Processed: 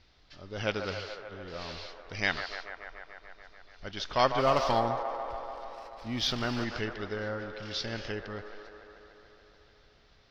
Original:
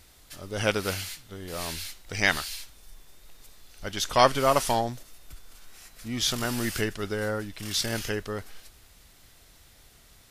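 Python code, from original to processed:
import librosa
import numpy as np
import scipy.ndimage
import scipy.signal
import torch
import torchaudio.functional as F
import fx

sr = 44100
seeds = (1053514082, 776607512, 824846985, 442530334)

y = scipy.signal.sosfilt(scipy.signal.butter(8, 5400.0, 'lowpass', fs=sr, output='sos'), x)
y = fx.leveller(y, sr, passes=1, at=(4.38, 6.64))
y = fx.echo_wet_bandpass(y, sr, ms=145, feedback_pct=78, hz=870.0, wet_db=-7)
y = y * 10.0 ** (-6.0 / 20.0)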